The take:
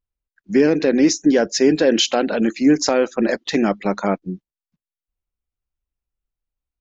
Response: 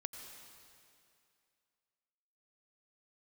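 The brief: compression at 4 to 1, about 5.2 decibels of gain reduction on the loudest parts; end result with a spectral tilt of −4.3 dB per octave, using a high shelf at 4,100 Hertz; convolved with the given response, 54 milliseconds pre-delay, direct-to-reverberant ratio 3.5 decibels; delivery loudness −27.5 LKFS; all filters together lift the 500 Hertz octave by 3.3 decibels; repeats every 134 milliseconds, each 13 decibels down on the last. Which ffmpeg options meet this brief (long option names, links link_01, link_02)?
-filter_complex "[0:a]equalizer=frequency=500:width_type=o:gain=4,highshelf=frequency=4100:gain=-8.5,acompressor=threshold=-14dB:ratio=4,aecho=1:1:134|268|402:0.224|0.0493|0.0108,asplit=2[link_01][link_02];[1:a]atrim=start_sample=2205,adelay=54[link_03];[link_02][link_03]afir=irnorm=-1:irlink=0,volume=-1.5dB[link_04];[link_01][link_04]amix=inputs=2:normalize=0,volume=-9dB"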